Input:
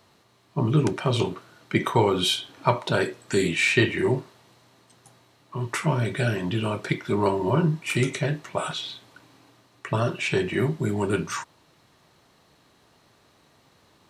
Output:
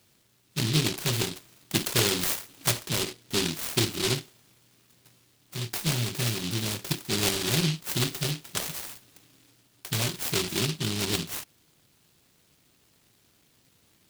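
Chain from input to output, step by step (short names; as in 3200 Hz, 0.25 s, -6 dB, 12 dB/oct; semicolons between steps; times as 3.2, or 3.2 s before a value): 2.71–4.1 bell 4800 Hz -14 dB 2.3 oct; noise-modulated delay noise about 3500 Hz, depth 0.42 ms; gain -4 dB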